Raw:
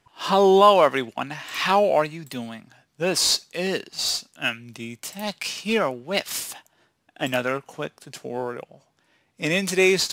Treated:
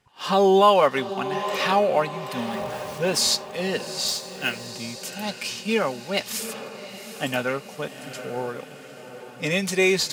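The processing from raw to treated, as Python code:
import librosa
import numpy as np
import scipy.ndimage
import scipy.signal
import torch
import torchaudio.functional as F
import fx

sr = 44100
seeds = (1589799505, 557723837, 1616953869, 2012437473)

p1 = fx.zero_step(x, sr, step_db=-33.5, at=(2.38, 3.23))
p2 = fx.notch_comb(p1, sr, f0_hz=330.0)
p3 = p2 + fx.echo_diffused(p2, sr, ms=789, feedback_pct=54, wet_db=-11.5, dry=0)
y = fx.quant_float(p3, sr, bits=2, at=(4.07, 4.67))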